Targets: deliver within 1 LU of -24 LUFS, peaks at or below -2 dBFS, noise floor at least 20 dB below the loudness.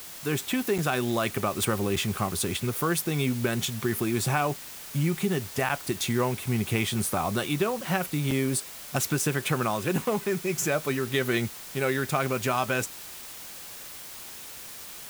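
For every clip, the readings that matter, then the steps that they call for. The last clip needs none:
dropouts 4; longest dropout 5.0 ms; noise floor -42 dBFS; noise floor target -48 dBFS; loudness -27.5 LUFS; peak level -10.0 dBFS; loudness target -24.0 LUFS
-> interpolate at 0.78/1.96/5.69/8.31 s, 5 ms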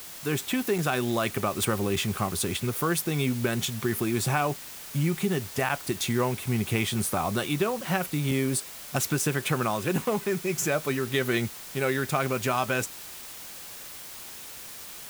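dropouts 0; noise floor -42 dBFS; noise floor target -48 dBFS
-> noise print and reduce 6 dB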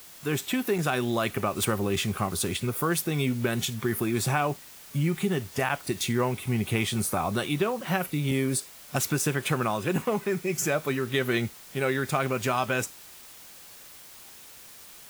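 noise floor -48 dBFS; loudness -28.0 LUFS; peak level -10.5 dBFS; loudness target -24.0 LUFS
-> trim +4 dB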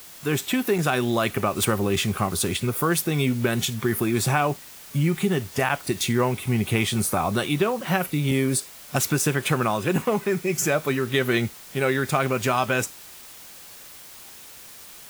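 loudness -24.0 LUFS; peak level -6.5 dBFS; noise floor -44 dBFS

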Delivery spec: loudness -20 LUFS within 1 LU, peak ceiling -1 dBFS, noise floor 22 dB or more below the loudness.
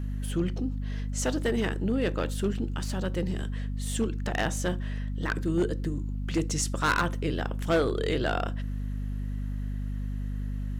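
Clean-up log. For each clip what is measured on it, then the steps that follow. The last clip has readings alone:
clipped samples 0.6%; clipping level -19.0 dBFS; hum 50 Hz; highest harmonic 250 Hz; hum level -29 dBFS; loudness -30.5 LUFS; peak level -19.0 dBFS; loudness target -20.0 LUFS
-> clip repair -19 dBFS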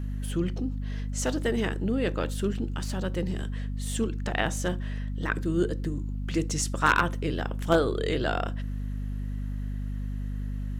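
clipped samples 0.0%; hum 50 Hz; highest harmonic 250 Hz; hum level -29 dBFS
-> de-hum 50 Hz, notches 5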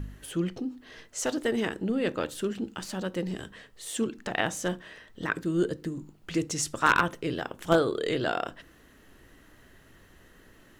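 hum not found; loudness -30.0 LUFS; peak level -8.5 dBFS; loudness target -20.0 LUFS
-> trim +10 dB; peak limiter -1 dBFS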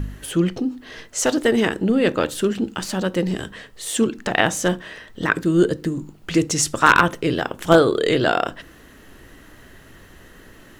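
loudness -20.5 LUFS; peak level -1.0 dBFS; noise floor -47 dBFS

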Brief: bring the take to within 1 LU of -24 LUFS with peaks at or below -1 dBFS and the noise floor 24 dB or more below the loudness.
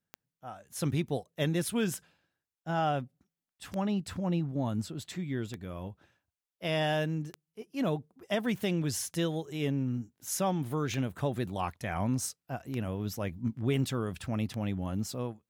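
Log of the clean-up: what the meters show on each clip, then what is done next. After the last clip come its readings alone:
clicks found 9; loudness -33.0 LUFS; peak level -18.5 dBFS; loudness target -24.0 LUFS
-> de-click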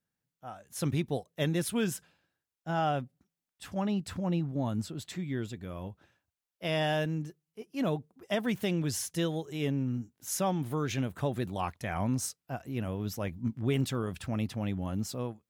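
clicks found 0; loudness -33.0 LUFS; peak level -18.5 dBFS; loudness target -24.0 LUFS
-> trim +9 dB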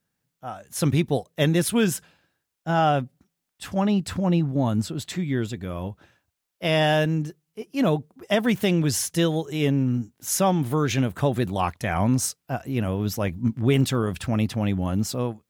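loudness -24.0 LUFS; peak level -9.5 dBFS; noise floor -81 dBFS

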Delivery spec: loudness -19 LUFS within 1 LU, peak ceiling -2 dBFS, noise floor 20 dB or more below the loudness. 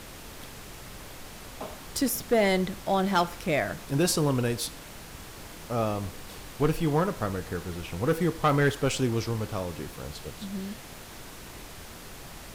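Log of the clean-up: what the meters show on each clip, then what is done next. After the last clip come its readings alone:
clipped samples 0.3%; clipping level -16.0 dBFS; noise floor -44 dBFS; noise floor target -48 dBFS; loudness -28.0 LUFS; peak level -16.0 dBFS; loudness target -19.0 LUFS
-> clip repair -16 dBFS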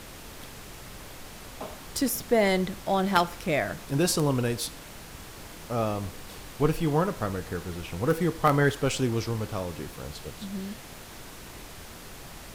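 clipped samples 0.0%; noise floor -44 dBFS; noise floor target -48 dBFS
-> noise print and reduce 6 dB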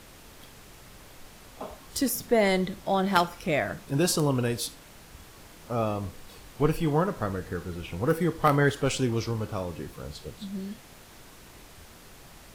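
noise floor -50 dBFS; loudness -27.5 LUFS; peak level -7.0 dBFS; loudness target -19.0 LUFS
-> trim +8.5 dB; peak limiter -2 dBFS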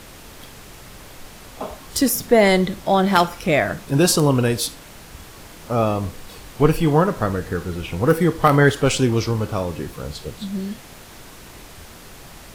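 loudness -19.5 LUFS; peak level -2.0 dBFS; noise floor -42 dBFS

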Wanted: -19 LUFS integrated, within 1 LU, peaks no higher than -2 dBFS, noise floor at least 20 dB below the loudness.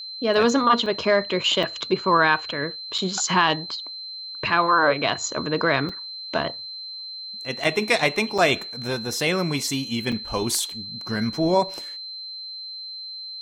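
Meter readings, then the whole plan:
dropouts 7; longest dropout 4.7 ms; steady tone 4.1 kHz; tone level -33 dBFS; loudness -23.5 LUFS; peak level -4.5 dBFS; loudness target -19.0 LUFS
-> interpolate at 0.86/1.63/2.98/5.89/7.64/8.38/10.12 s, 4.7 ms; band-stop 4.1 kHz, Q 30; trim +4.5 dB; peak limiter -2 dBFS

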